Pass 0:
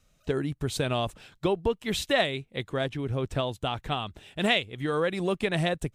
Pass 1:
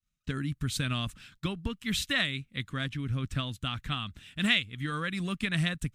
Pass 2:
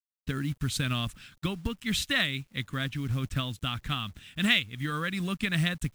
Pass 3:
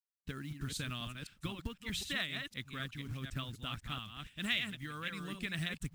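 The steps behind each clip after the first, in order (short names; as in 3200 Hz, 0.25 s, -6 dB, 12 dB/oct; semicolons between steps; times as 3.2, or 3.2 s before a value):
band shelf 570 Hz -16 dB; expander -53 dBFS
companded quantiser 6-bit; gain +1.5 dB
reverse delay 0.254 s, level -5.5 dB; harmonic-percussive split harmonic -5 dB; gain -8.5 dB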